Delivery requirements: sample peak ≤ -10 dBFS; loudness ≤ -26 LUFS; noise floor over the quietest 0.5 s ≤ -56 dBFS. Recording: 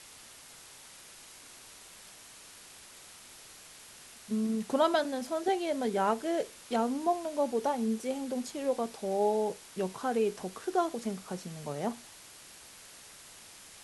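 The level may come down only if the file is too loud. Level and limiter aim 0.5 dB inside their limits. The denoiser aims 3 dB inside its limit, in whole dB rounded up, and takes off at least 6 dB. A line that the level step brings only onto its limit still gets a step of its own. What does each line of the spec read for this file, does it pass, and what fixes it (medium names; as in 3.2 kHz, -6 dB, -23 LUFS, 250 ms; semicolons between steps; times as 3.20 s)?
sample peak -15.0 dBFS: pass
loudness -32.0 LUFS: pass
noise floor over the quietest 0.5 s -52 dBFS: fail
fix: noise reduction 7 dB, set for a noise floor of -52 dBFS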